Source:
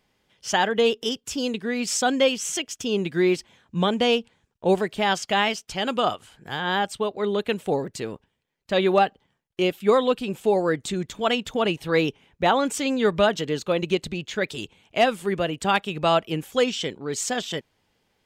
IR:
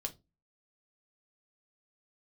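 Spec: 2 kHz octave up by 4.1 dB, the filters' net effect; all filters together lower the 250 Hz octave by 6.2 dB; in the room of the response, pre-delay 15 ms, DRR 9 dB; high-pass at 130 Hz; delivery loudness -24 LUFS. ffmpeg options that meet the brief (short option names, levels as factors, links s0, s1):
-filter_complex "[0:a]highpass=130,equalizer=f=250:t=o:g=-8.5,equalizer=f=2000:t=o:g=5.5,asplit=2[s0][s1];[1:a]atrim=start_sample=2205,adelay=15[s2];[s1][s2]afir=irnorm=-1:irlink=0,volume=0.398[s3];[s0][s3]amix=inputs=2:normalize=0,volume=0.944"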